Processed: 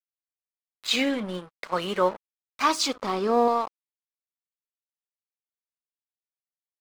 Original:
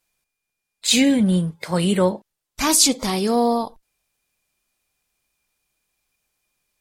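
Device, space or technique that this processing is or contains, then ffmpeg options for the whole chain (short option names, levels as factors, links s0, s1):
pocket radio on a weak battery: -filter_complex "[0:a]asettb=1/sr,asplit=3[s0][s1][s2];[s0]atrim=end=2.954[s3];[s1]atrim=start=2.95:end=3.48,asetpts=PTS-STARTPTS,afade=t=in:d=0.004:c=qsin,afade=t=out:st=0.526:d=0.004:c=qsin,tiltshelf=f=850:g=6[s4];[s2]atrim=start=3.476[s5];[s3][s4]acrossfade=d=0.004:c1=hsin:c2=qsin[s6];[s6][s5]acrossfade=d=0.004:c1=qsin:c2=hsin,highpass=380,lowpass=3900,aeval=exprs='sgn(val(0))*max(abs(val(0))-0.0133,0)':c=same,equalizer=f=1200:t=o:w=0.52:g=8.5,volume=0.75"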